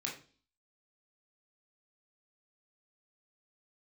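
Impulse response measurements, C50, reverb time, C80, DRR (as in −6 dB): 8.0 dB, 0.40 s, 13.0 dB, −3.0 dB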